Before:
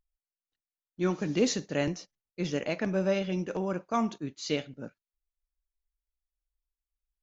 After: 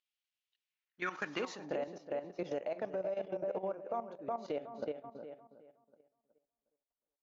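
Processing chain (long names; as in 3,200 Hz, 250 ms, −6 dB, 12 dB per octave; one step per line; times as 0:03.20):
feedback echo with a low-pass in the loop 367 ms, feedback 29%, low-pass 3,600 Hz, level −6 dB
band-pass filter sweep 3,000 Hz → 650 Hz, 0:00.61–0:01.82
downward compressor 4 to 1, threshold −46 dBFS, peak gain reduction 17 dB
0:01.06–0:03.25: high-shelf EQ 2,200 Hz +7 dB
output level in coarse steps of 12 dB
level +13 dB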